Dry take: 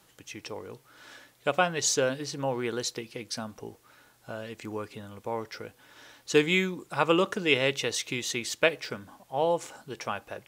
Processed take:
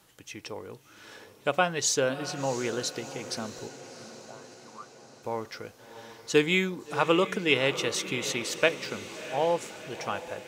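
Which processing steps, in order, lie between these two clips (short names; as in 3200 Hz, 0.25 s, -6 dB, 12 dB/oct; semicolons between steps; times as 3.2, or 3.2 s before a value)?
3.67–5.23 auto-wah 500–1200 Hz, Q 5, up, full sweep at -32 dBFS; diffused feedback echo 0.692 s, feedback 56%, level -13 dB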